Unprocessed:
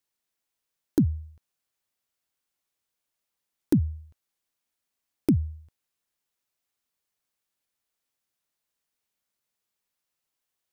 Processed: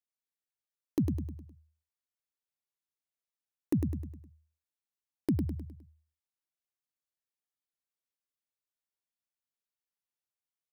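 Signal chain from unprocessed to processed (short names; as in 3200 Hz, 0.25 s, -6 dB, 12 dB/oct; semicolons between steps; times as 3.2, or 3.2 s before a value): gate -43 dBFS, range -8 dB; feedback echo 0.103 s, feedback 44%, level -5.5 dB; gain -7.5 dB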